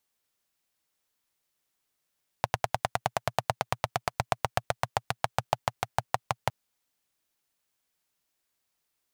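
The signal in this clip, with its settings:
pulse-train model of a single-cylinder engine, changing speed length 4.06 s, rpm 1,200, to 700, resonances 120/720 Hz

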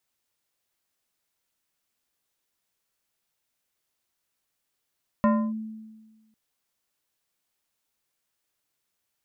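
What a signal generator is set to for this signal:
two-operator FM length 1.10 s, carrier 219 Hz, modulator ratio 3.69, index 0.96, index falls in 0.29 s linear, decay 1.38 s, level −15.5 dB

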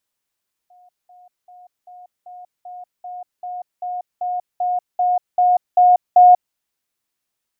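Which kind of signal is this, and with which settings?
level staircase 721 Hz −47 dBFS, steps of 3 dB, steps 15, 0.19 s 0.20 s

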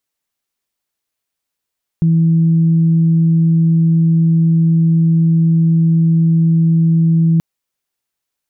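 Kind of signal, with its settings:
steady harmonic partials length 5.38 s, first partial 164 Hz, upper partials −20 dB, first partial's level −8.5 dB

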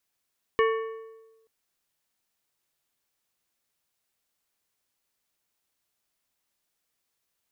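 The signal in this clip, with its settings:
struck metal plate, length 0.88 s, lowest mode 447 Hz, decay 1.17 s, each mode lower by 4.5 dB, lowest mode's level −18.5 dB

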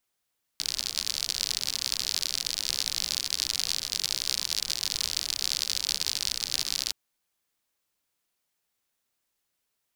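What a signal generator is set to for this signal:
rain-like ticks over hiss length 6.32 s, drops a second 68, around 4,600 Hz, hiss −18 dB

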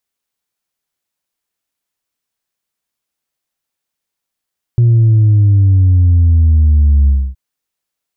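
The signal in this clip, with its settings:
bass drop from 120 Hz, over 2.57 s, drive 1 dB, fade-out 0.27 s, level −6 dB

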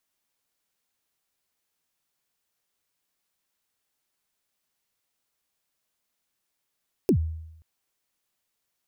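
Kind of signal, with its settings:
synth kick length 0.53 s, from 440 Hz, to 80 Hz, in 84 ms, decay 0.85 s, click on, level −14.5 dB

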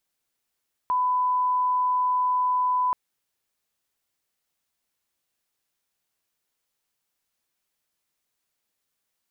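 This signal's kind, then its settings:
line-up tone −20 dBFS 2.03 s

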